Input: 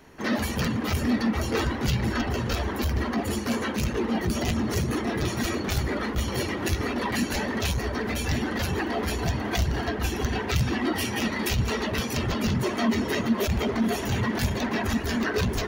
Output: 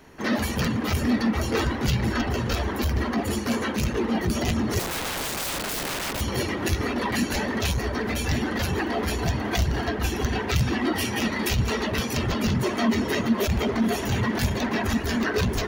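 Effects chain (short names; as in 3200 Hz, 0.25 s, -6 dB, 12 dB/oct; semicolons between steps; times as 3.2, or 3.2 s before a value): 4.79–6.21 wrapped overs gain 26 dB; gain +1.5 dB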